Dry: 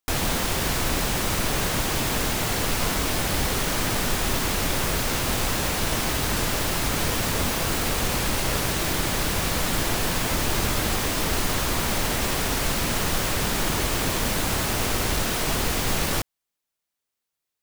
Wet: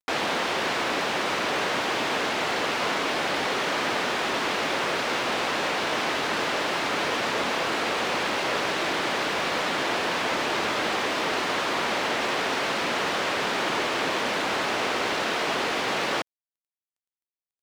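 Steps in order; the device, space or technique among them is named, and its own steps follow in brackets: phone line with mismatched companding (BPF 360–3500 Hz; G.711 law mismatch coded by mu); gain +2 dB

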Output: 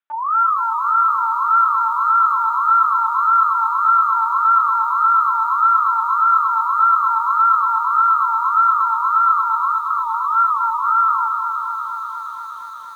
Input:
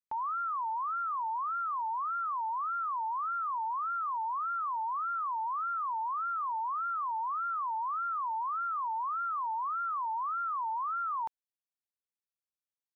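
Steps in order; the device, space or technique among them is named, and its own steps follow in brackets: 9.34–10.24 elliptic band-pass 470–1200 Hz, stop band 60 dB; talking toy (LPC vocoder at 8 kHz pitch kept; HPF 500 Hz 12 dB/oct; bell 1400 Hz +11 dB 0.49 oct); lo-fi delay 0.236 s, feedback 80%, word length 10-bit, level -6.5 dB; gain +8 dB

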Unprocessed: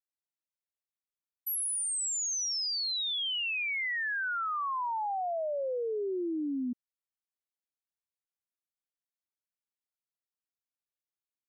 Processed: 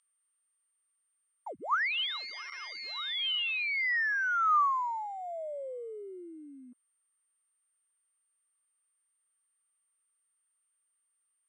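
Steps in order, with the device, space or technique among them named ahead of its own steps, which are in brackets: toy sound module (decimation joined by straight lines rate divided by 4×; pulse-width modulation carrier 8900 Hz; speaker cabinet 710–4900 Hz, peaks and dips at 780 Hz -6 dB, 1200 Hz +10 dB, 1900 Hz +4 dB, 3100 Hz +5 dB)

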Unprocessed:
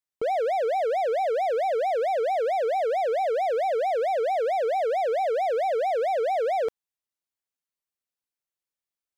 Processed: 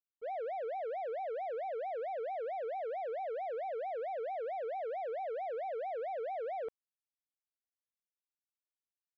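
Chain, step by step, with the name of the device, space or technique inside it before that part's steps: hearing-loss simulation (LPF 2500 Hz 12 dB/oct; expander -17 dBFS); gain -3.5 dB

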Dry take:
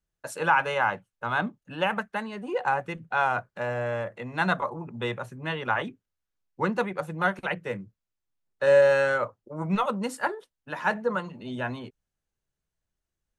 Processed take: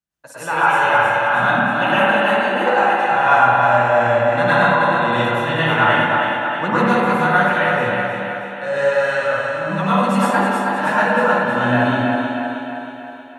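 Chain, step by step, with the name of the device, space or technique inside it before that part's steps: far laptop microphone (reverb RT60 0.55 s, pre-delay 97 ms, DRR -7.5 dB; HPF 110 Hz; AGC gain up to 13 dB); 2.48–3.09 HPF 160 Hz -> 510 Hz 12 dB/oct; bell 430 Hz -7.5 dB 0.37 oct; thinning echo 0.316 s, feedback 56%, high-pass 160 Hz, level -5.5 dB; spring tank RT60 2.2 s, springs 52/56 ms, chirp 45 ms, DRR -0.5 dB; gain -3.5 dB

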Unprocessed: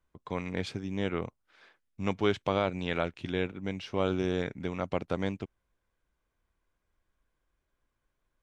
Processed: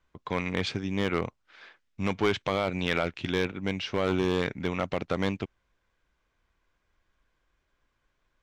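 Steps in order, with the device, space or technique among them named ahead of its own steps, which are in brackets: LPF 7400 Hz 24 dB/oct; limiter into clipper (limiter -17.5 dBFS, peak gain reduction 5 dB; hard clip -22.5 dBFS, distortion -15 dB); bell 2400 Hz +5 dB 2.6 oct; gain +4 dB

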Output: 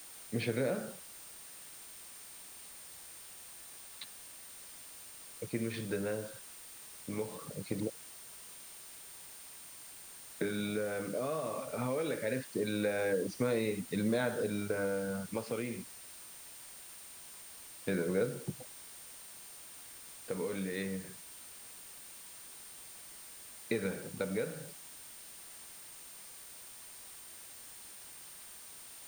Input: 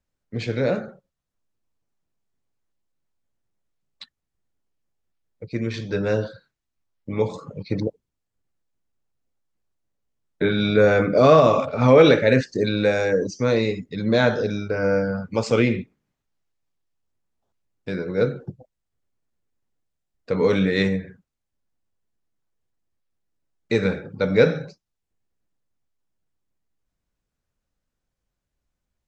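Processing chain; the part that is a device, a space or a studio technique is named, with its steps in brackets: medium wave at night (BPF 130–3800 Hz; compressor, threshold -26 dBFS, peak gain reduction 16.5 dB; tremolo 0.22 Hz, depth 50%; whine 9000 Hz -50 dBFS; white noise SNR 13 dB); gain -2.5 dB

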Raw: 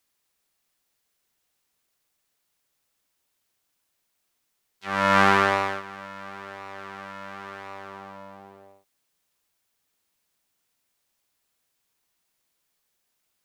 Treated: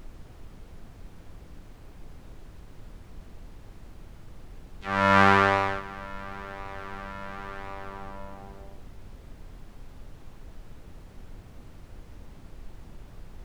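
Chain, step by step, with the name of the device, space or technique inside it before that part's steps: car interior (bell 110 Hz +5.5 dB; high shelf 4800 Hz -7.5 dB; brown noise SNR 10 dB)

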